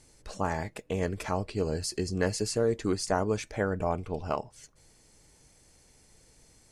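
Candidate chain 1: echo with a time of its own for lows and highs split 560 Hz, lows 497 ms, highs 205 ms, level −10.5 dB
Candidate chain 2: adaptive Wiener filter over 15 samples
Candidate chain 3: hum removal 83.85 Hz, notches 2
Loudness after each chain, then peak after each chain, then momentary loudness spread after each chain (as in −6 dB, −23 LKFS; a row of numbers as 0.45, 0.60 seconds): −31.0, −31.5, −31.0 LKFS; −13.0, −13.5, −13.5 dBFS; 17, 7, 7 LU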